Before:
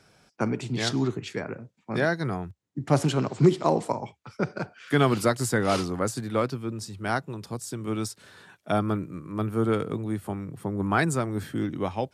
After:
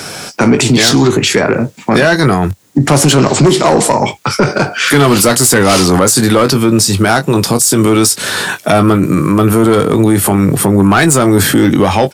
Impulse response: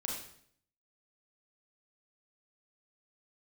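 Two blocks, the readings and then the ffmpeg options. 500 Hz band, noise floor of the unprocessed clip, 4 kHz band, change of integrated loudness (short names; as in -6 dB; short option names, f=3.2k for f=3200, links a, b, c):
+16.5 dB, -67 dBFS, +22.5 dB, +17.5 dB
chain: -filter_complex "[0:a]highpass=f=170:p=1,highshelf=f=5.5k:g=9.5,asplit=2[a][b];[b]acompressor=threshold=-38dB:ratio=6,volume=3dB[c];[a][c]amix=inputs=2:normalize=0,asoftclip=type=tanh:threshold=-19dB,asplit=2[d][e];[e]adelay=21,volume=-11dB[f];[d][f]amix=inputs=2:normalize=0,alimiter=level_in=26.5dB:limit=-1dB:release=50:level=0:latency=1,volume=-1dB"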